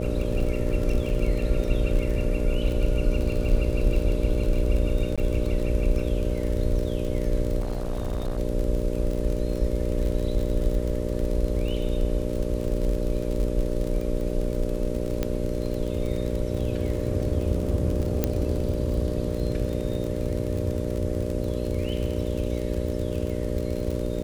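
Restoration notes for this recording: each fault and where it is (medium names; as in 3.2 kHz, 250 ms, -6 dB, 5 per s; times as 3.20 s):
buzz 60 Hz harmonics 10 -29 dBFS
crackle 47 per s -29 dBFS
5.16–5.18 s: dropout 16 ms
7.59–8.39 s: clipped -23.5 dBFS
15.23 s: pop -13 dBFS
18.24 s: pop -9 dBFS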